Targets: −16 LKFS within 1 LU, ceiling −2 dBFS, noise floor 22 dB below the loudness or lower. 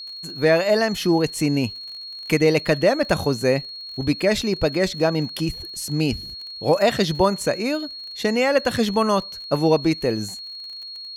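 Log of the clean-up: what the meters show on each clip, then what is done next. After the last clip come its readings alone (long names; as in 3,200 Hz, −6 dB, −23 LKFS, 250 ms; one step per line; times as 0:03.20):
crackle rate 40 per second; interfering tone 4,300 Hz; level of the tone −33 dBFS; integrated loudness −21.5 LKFS; sample peak −4.5 dBFS; target loudness −16.0 LKFS
→ click removal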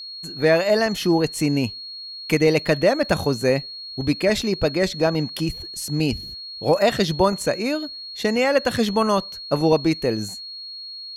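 crackle rate 0.18 per second; interfering tone 4,300 Hz; level of the tone −33 dBFS
→ notch filter 4,300 Hz, Q 30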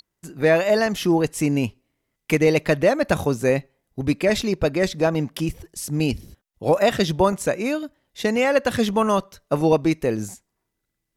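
interfering tone none found; integrated loudness −21.5 LKFS; sample peak −4.5 dBFS; target loudness −16.0 LKFS
→ level +5.5 dB
brickwall limiter −2 dBFS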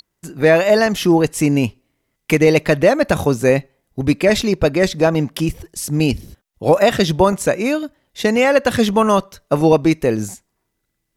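integrated loudness −16.5 LKFS; sample peak −2.0 dBFS; background noise floor −74 dBFS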